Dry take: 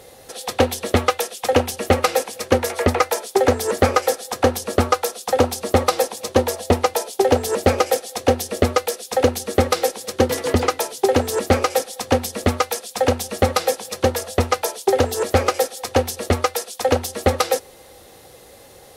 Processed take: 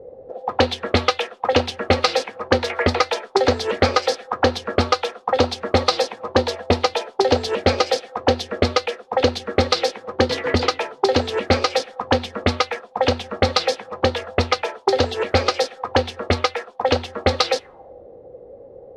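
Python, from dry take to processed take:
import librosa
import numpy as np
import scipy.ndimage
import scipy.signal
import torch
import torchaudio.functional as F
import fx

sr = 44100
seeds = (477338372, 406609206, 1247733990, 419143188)

y = fx.envelope_lowpass(x, sr, base_hz=470.0, top_hz=4400.0, q=3.2, full_db=-14.5, direction='up')
y = F.gain(torch.from_numpy(y), -1.5).numpy()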